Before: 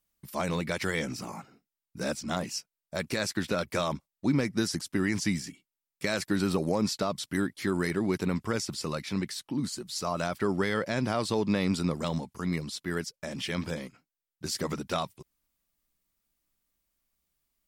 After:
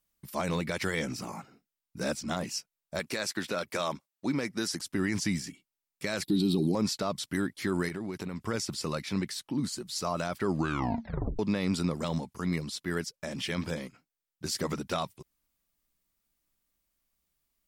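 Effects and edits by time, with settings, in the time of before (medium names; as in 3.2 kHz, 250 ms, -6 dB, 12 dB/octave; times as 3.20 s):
2.99–4.80 s: high-pass 330 Hz 6 dB/octave
6.23–6.75 s: FFT filter 100 Hz 0 dB, 170 Hz +8 dB, 360 Hz +10 dB, 560 Hz -14 dB, 800 Hz -3 dB, 1.6 kHz -20 dB, 3.8 kHz +13 dB, 6.1 kHz -6 dB, 11 kHz +4 dB
7.88–8.44 s: compression, threshold -32 dBFS
10.46 s: tape stop 0.93 s
whole clip: peak limiter -18.5 dBFS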